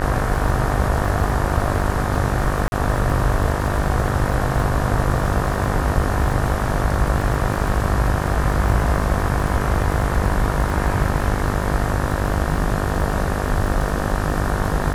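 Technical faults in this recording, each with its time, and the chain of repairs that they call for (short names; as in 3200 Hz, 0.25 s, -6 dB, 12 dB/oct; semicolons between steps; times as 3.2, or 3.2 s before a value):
buzz 50 Hz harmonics 37 -24 dBFS
crackle 34/s -25 dBFS
2.68–2.72 gap 41 ms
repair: de-click; de-hum 50 Hz, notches 37; interpolate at 2.68, 41 ms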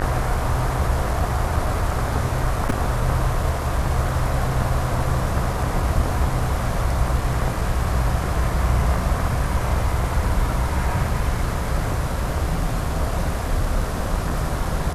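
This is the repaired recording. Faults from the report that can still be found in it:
none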